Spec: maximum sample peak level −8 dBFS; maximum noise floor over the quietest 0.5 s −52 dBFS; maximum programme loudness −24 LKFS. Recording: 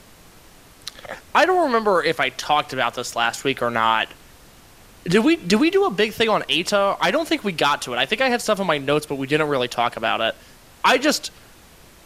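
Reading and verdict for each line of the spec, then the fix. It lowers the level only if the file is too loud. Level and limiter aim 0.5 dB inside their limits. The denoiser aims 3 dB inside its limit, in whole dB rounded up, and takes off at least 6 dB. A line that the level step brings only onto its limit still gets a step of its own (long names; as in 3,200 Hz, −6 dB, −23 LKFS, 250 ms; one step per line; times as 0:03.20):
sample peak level −5.0 dBFS: out of spec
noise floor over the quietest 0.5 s −48 dBFS: out of spec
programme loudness −20.0 LKFS: out of spec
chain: level −4.5 dB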